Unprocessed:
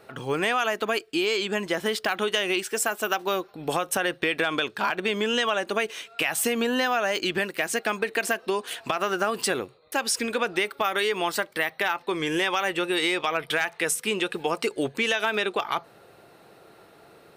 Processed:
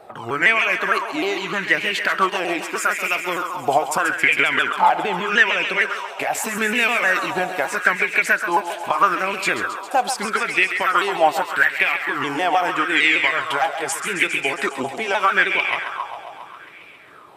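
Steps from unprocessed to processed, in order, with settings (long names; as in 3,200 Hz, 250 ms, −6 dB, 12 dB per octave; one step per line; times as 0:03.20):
pitch shifter swept by a sawtooth −3 semitones, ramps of 153 ms
on a send: feedback echo with a high-pass in the loop 135 ms, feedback 77%, high-pass 420 Hz, level −8.5 dB
on the sum: auto-filter bell 0.8 Hz 720–2,400 Hz +17 dB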